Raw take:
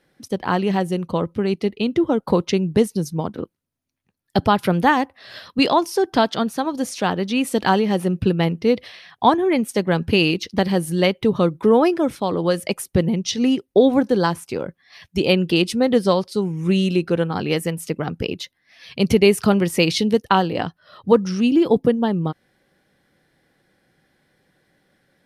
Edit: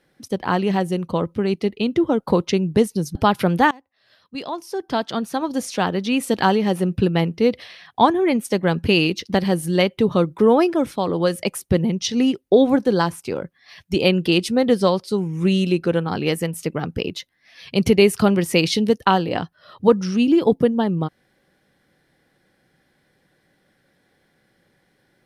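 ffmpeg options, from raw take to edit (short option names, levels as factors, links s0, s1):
-filter_complex "[0:a]asplit=3[s0][s1][s2];[s0]atrim=end=3.152[s3];[s1]atrim=start=4.388:end=4.95,asetpts=PTS-STARTPTS,afade=t=out:st=0.558:d=0.004:c=hsin:silence=0.0630957[s4];[s2]atrim=start=4.95,asetpts=PTS-STARTPTS,afade=t=in:d=1.75:c=qua:silence=0.0630957[s5];[s4][s5]concat=n=2:v=0:a=1[s6];[s3][s6]acrossfade=d=0.004:c1=hsin:c2=hsin"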